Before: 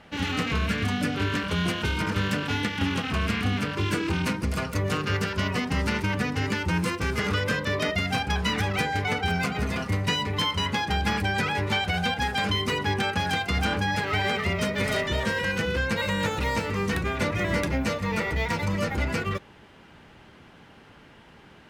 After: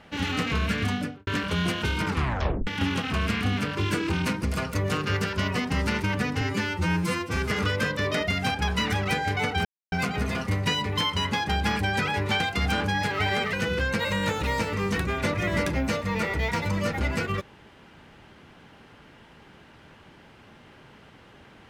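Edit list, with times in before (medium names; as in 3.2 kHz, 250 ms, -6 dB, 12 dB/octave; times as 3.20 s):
0.89–1.27 s: studio fade out
2.07 s: tape stop 0.60 s
6.41–7.05 s: stretch 1.5×
9.33 s: insert silence 0.27 s
11.81–13.33 s: delete
14.46–15.50 s: delete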